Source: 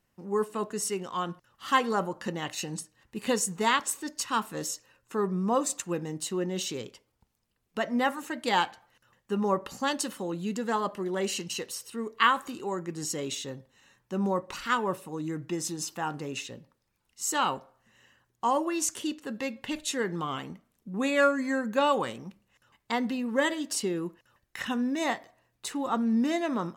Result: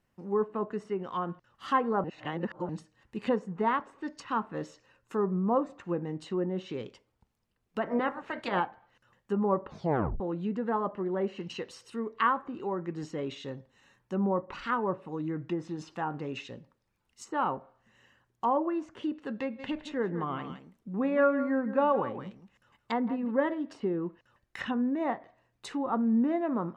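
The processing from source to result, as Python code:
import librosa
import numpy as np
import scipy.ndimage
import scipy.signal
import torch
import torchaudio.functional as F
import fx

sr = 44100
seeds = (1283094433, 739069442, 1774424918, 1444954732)

y = fx.spec_clip(x, sr, under_db=17, at=(7.81, 8.59), fade=0.02)
y = fx.echo_single(y, sr, ms=167, db=-12.0, at=(19.58, 23.3), fade=0.02)
y = fx.edit(y, sr, fx.reverse_span(start_s=2.04, length_s=0.65),
    fx.tape_stop(start_s=9.68, length_s=0.52), tone=tone)
y = fx.env_lowpass_down(y, sr, base_hz=1300.0, full_db=-27.0)
y = fx.high_shelf(y, sr, hz=4000.0, db=-9.0)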